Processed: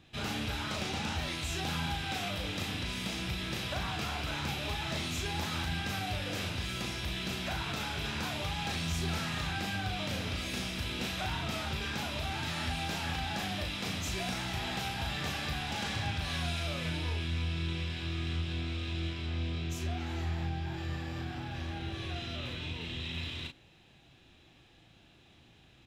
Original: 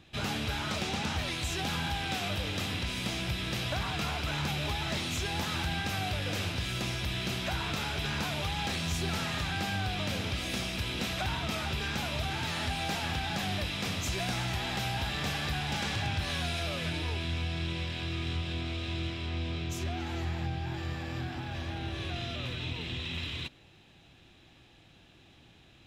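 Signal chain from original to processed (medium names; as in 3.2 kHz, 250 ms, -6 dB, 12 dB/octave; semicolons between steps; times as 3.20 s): doubling 37 ms -4.5 dB; trim -3.5 dB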